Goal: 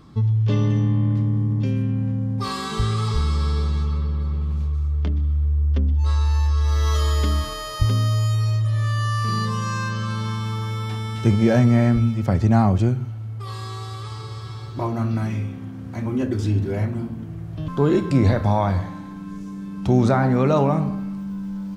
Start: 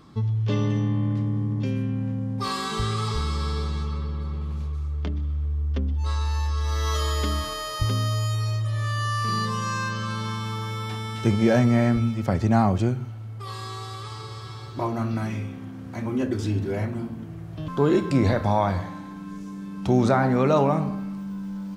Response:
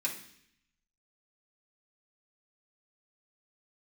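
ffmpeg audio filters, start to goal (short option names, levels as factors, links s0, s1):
-af "lowshelf=f=170:g=7.5"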